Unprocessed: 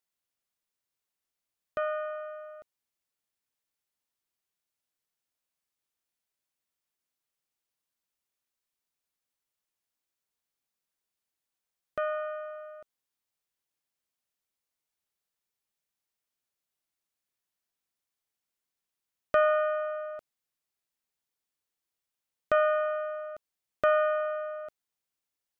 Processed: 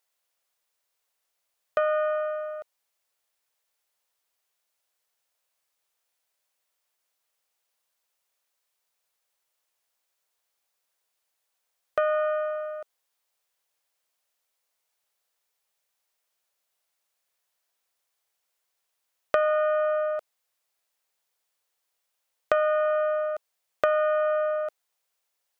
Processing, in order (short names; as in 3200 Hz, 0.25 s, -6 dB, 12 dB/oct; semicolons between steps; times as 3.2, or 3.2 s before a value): resonant low shelf 390 Hz -9.5 dB, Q 1.5; compressor 6:1, threshold -29 dBFS, peak gain reduction 11 dB; gain +8.5 dB